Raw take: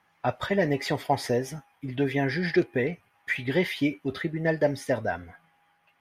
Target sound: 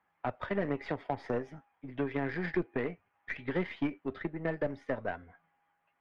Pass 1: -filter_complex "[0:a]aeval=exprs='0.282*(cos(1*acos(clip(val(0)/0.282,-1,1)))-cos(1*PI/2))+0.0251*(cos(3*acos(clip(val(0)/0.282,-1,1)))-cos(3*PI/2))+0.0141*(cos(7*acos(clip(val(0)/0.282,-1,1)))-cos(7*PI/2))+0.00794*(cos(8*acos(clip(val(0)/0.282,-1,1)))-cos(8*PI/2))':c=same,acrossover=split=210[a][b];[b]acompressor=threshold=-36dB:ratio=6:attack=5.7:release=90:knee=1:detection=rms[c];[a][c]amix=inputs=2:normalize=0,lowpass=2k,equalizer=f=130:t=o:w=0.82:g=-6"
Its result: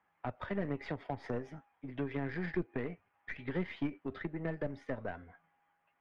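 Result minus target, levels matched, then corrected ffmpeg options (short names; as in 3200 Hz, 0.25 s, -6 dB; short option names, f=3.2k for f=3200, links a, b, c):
compressor: peak gain reduction +6 dB
-filter_complex "[0:a]aeval=exprs='0.282*(cos(1*acos(clip(val(0)/0.282,-1,1)))-cos(1*PI/2))+0.0251*(cos(3*acos(clip(val(0)/0.282,-1,1)))-cos(3*PI/2))+0.0141*(cos(7*acos(clip(val(0)/0.282,-1,1)))-cos(7*PI/2))+0.00794*(cos(8*acos(clip(val(0)/0.282,-1,1)))-cos(8*PI/2))':c=same,acrossover=split=210[a][b];[b]acompressor=threshold=-28.5dB:ratio=6:attack=5.7:release=90:knee=1:detection=rms[c];[a][c]amix=inputs=2:normalize=0,lowpass=2k,equalizer=f=130:t=o:w=0.82:g=-6"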